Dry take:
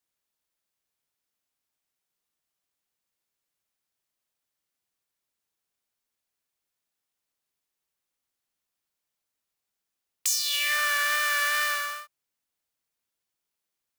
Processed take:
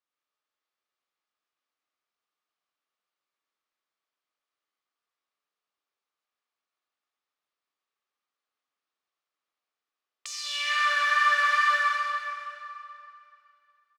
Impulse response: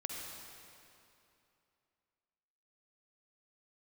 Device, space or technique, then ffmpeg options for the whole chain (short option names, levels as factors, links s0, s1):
station announcement: -filter_complex "[0:a]highpass=330,lowpass=4200,equalizer=f=1200:t=o:w=0.28:g=8.5,aecho=1:1:128.3|207:0.316|0.251[s0];[1:a]atrim=start_sample=2205[s1];[s0][s1]afir=irnorm=-1:irlink=0,volume=0.841"